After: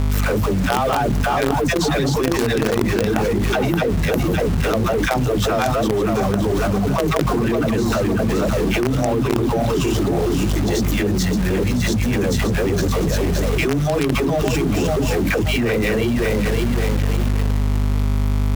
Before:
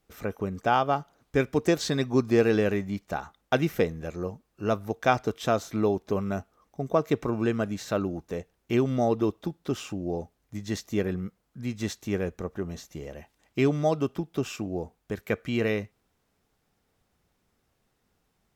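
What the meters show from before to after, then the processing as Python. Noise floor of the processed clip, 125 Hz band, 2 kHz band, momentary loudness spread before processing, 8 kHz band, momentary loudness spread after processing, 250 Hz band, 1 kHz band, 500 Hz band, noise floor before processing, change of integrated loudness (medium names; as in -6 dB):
-19 dBFS, +13.5 dB, +11.0 dB, 13 LU, +14.0 dB, 1 LU, +10.0 dB, +8.0 dB, +8.0 dB, -74 dBFS, +9.5 dB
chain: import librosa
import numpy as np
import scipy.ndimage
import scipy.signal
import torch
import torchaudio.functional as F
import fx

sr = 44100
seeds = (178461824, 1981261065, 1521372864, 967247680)

p1 = fx.reverse_delay_fb(x, sr, ms=282, feedback_pct=57, wet_db=-1.0)
p2 = fx.low_shelf(p1, sr, hz=360.0, db=3.0)
p3 = fx.dereverb_blind(p2, sr, rt60_s=0.7)
p4 = fx.dispersion(p3, sr, late='lows', ms=120.0, hz=400.0)
p5 = fx.add_hum(p4, sr, base_hz=50, snr_db=11)
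p6 = fx.quant_companded(p5, sr, bits=2)
p7 = p5 + F.gain(torch.from_numpy(p6), -6.5).numpy()
p8 = fx.env_flatten(p7, sr, amount_pct=100)
y = F.gain(torch.from_numpy(p8), -10.0).numpy()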